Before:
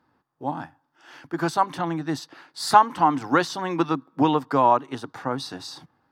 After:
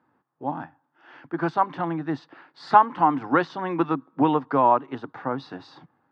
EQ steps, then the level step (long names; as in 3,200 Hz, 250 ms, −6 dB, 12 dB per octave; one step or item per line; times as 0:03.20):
high-pass filter 120 Hz
low-pass filter 2,500 Hz 12 dB per octave
high-frequency loss of the air 76 metres
0.0 dB